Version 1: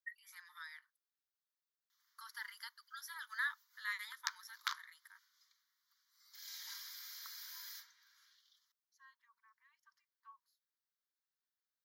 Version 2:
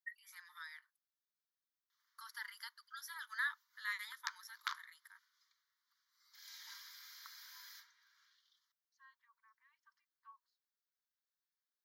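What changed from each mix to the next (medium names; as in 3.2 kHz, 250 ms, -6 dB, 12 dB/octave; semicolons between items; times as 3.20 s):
second voice: add distance through air 120 m; background: add treble shelf 4.5 kHz -9 dB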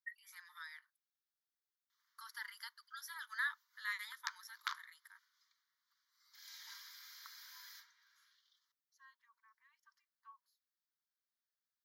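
second voice: remove distance through air 120 m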